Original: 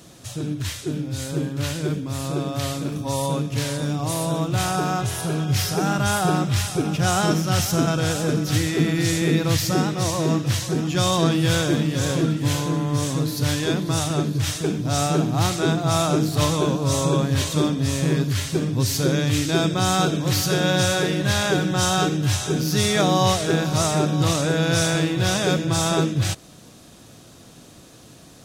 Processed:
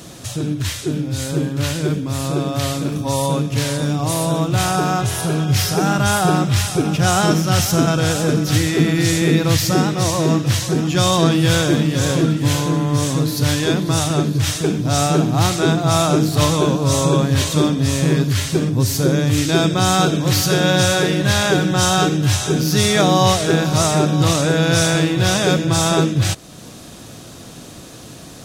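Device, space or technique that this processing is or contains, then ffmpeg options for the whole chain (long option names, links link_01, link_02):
parallel compression: -filter_complex "[0:a]asplit=2[link_01][link_02];[link_02]acompressor=threshold=-39dB:ratio=6,volume=-1.5dB[link_03];[link_01][link_03]amix=inputs=2:normalize=0,asettb=1/sr,asplit=3[link_04][link_05][link_06];[link_04]atrim=end=18.694[link_07];[link_05]atrim=start=18.69:end=19.38,asetpts=PTS-STARTPTS,afade=type=in:duration=0.004:curve=qsin,afade=type=out:start_time=0.686:duration=0.004:curve=qsin,equalizer=frequency=3200:width_type=o:width=2.2:gain=-5[link_08];[link_06]atrim=start=19.376[link_09];[link_07][link_08]acrossfade=duration=0.004:curve1=hsin:curve2=qsin[link_10];[link_10][link_09]acrossfade=duration=0.004:curve1=qsin:curve2=hsin,volume=4dB"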